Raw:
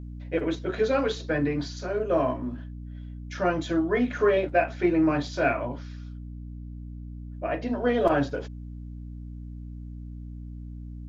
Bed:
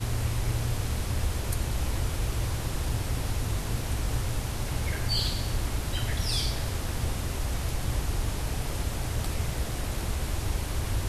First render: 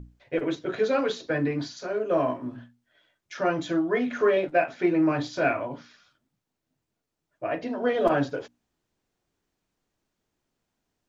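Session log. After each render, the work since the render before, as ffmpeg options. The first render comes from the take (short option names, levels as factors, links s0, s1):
-af "bandreject=f=60:t=h:w=6,bandreject=f=120:t=h:w=6,bandreject=f=180:t=h:w=6,bandreject=f=240:t=h:w=6,bandreject=f=300:t=h:w=6"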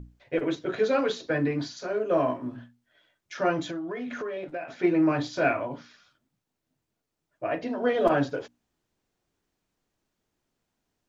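-filter_complex "[0:a]asplit=3[s0][s1][s2];[s0]afade=t=out:st=3.67:d=0.02[s3];[s1]acompressor=threshold=0.0282:ratio=6:attack=3.2:release=140:knee=1:detection=peak,afade=t=in:st=3.67:d=0.02,afade=t=out:st=4.82:d=0.02[s4];[s2]afade=t=in:st=4.82:d=0.02[s5];[s3][s4][s5]amix=inputs=3:normalize=0"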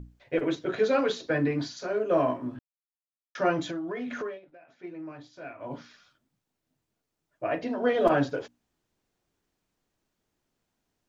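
-filter_complex "[0:a]asplit=5[s0][s1][s2][s3][s4];[s0]atrim=end=2.59,asetpts=PTS-STARTPTS,afade=t=out:st=2.586:d=0.004:c=hsin[s5];[s1]atrim=start=2.59:end=3.35,asetpts=PTS-STARTPTS,volume=0[s6];[s2]atrim=start=3.35:end=4.4,asetpts=PTS-STARTPTS,afade=t=in:d=0.004:c=hsin,afade=t=out:st=0.91:d=0.14:silence=0.125893[s7];[s3]atrim=start=4.4:end=5.59,asetpts=PTS-STARTPTS,volume=0.126[s8];[s4]atrim=start=5.59,asetpts=PTS-STARTPTS,afade=t=in:d=0.14:silence=0.125893[s9];[s5][s6][s7][s8][s9]concat=n=5:v=0:a=1"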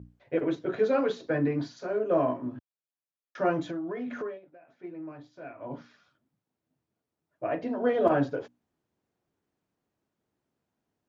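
-af "highpass=82,highshelf=f=2100:g=-11"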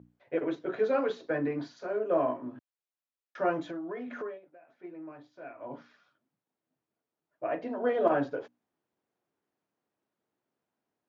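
-af "highpass=f=380:p=1,highshelf=f=4300:g=-9.5"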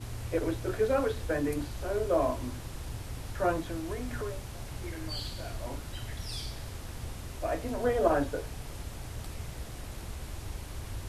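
-filter_complex "[1:a]volume=0.316[s0];[0:a][s0]amix=inputs=2:normalize=0"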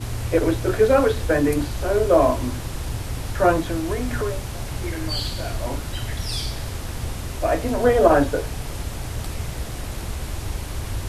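-af "volume=3.55,alimiter=limit=0.708:level=0:latency=1"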